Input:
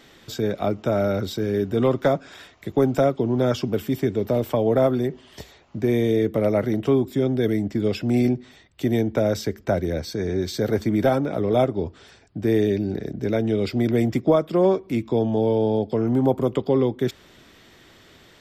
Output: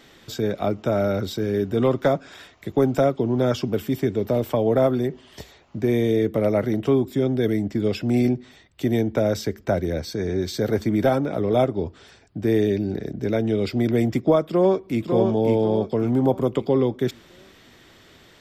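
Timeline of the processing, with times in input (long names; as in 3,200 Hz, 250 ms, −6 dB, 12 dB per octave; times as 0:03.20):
0:14.45–0:15.09: delay throw 550 ms, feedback 40%, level −4.5 dB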